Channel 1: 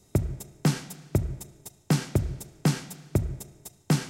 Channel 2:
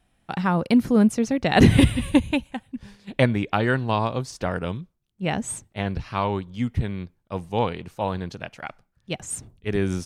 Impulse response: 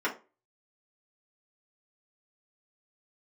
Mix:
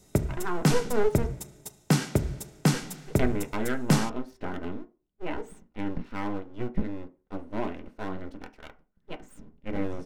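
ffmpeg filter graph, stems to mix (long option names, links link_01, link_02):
-filter_complex "[0:a]volume=1.5dB,asplit=2[link_01][link_02];[link_02]volume=-18dB[link_03];[1:a]bass=frequency=250:gain=12,treble=frequency=4000:gain=-14,aeval=exprs='abs(val(0))':channel_layout=same,volume=-11.5dB,asplit=3[link_04][link_05][link_06];[link_04]atrim=end=1.27,asetpts=PTS-STARTPTS,afade=type=out:start_time=1.266:duration=0.004:curve=hsin[link_07];[link_05]atrim=start=1.27:end=2.69,asetpts=PTS-STARTPTS,volume=0[link_08];[link_06]atrim=start=2.69,asetpts=PTS-STARTPTS,afade=type=in:duration=0.004:curve=hsin[link_09];[link_07][link_08][link_09]concat=n=3:v=0:a=1,asplit=2[link_10][link_11];[link_11]volume=-13dB[link_12];[2:a]atrim=start_sample=2205[link_13];[link_03][link_12]amix=inputs=2:normalize=0[link_14];[link_14][link_13]afir=irnorm=-1:irlink=0[link_15];[link_01][link_10][link_15]amix=inputs=3:normalize=0,equalizer=frequency=94:width=3.8:gain=-7"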